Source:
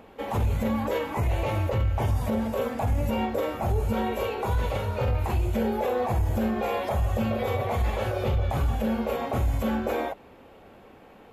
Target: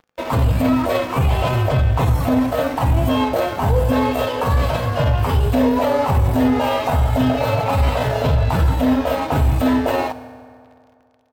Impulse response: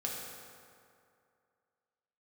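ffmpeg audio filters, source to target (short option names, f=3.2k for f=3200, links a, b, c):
-filter_complex "[0:a]asetrate=50951,aresample=44100,atempo=0.865537,aeval=exprs='sgn(val(0))*max(abs(val(0))-0.0075,0)':c=same,asplit=2[a][b];[1:a]atrim=start_sample=2205[c];[b][c]afir=irnorm=-1:irlink=0,volume=-10.5dB[d];[a][d]amix=inputs=2:normalize=0,volume=7.5dB"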